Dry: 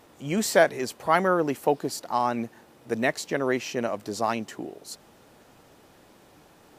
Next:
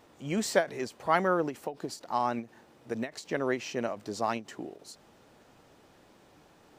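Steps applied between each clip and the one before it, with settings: bell 12000 Hz -9 dB 0.61 oct; ending taper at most 250 dB/s; gain -4 dB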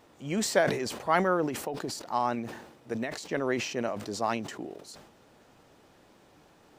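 sustainer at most 64 dB/s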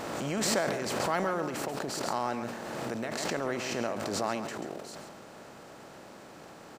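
per-bin compression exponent 0.6; echo 0.137 s -9 dB; backwards sustainer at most 22 dB/s; gain -8 dB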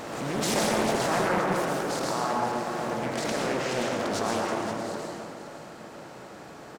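echo 0.522 s -11 dB; plate-style reverb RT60 2 s, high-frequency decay 0.5×, pre-delay 95 ms, DRR -2.5 dB; Doppler distortion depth 0.69 ms

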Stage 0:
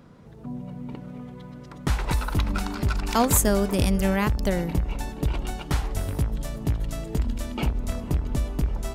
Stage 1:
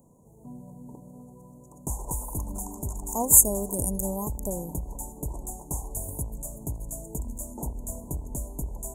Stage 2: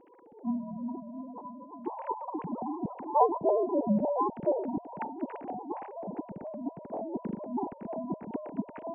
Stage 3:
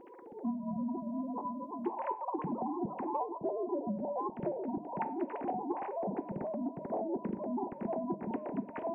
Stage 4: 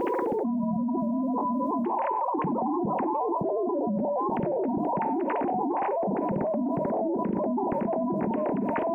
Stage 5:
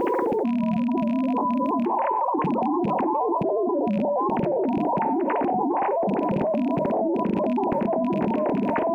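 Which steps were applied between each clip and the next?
Chebyshev band-stop 1000–6700 Hz, order 5; tone controls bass -3 dB, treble +15 dB; gain -6 dB
sine-wave speech; gain -3 dB
compressor 16:1, threshold -37 dBFS, peak gain reduction 20.5 dB; on a send at -8.5 dB: reverb RT60 0.40 s, pre-delay 3 ms; on the sum: gain +5 dB
fast leveller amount 100%; gain +3.5 dB
rattling part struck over -30 dBFS, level -33 dBFS; gain +4 dB

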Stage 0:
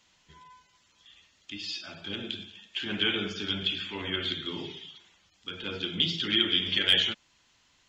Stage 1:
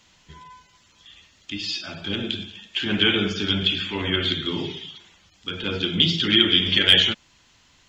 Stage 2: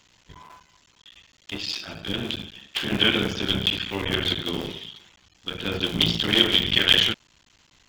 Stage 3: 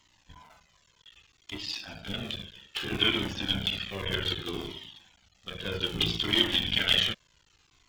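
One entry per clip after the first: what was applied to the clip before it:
low shelf 240 Hz +5.5 dB; gain +7.5 dB
cycle switcher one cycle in 3, muted
cascading flanger falling 0.63 Hz; gain -1.5 dB

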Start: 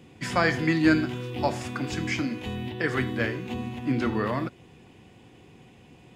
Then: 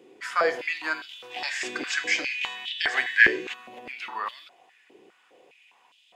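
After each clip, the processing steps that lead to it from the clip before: spectral gain 1.31–3.53, 1500–8500 Hz +11 dB; stepped high-pass 4.9 Hz 390–3300 Hz; gain -5 dB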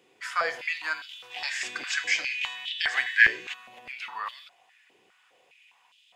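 bell 330 Hz -14.5 dB 1.8 oct

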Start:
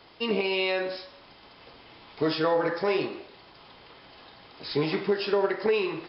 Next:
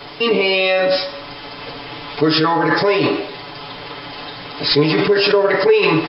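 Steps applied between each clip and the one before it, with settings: comb 6.9 ms, depth 99%; in parallel at +1.5 dB: negative-ratio compressor -30 dBFS, ratio -0.5; on the sum: gain +6 dB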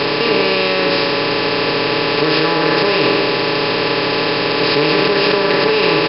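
per-bin compression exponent 0.2; gain -7.5 dB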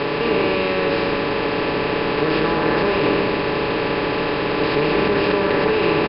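air absorption 320 m; frequency-shifting echo 0.127 s, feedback 37%, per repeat -100 Hz, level -8 dB; gain -3 dB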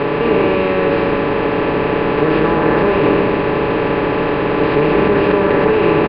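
air absorption 450 m; gain +6.5 dB

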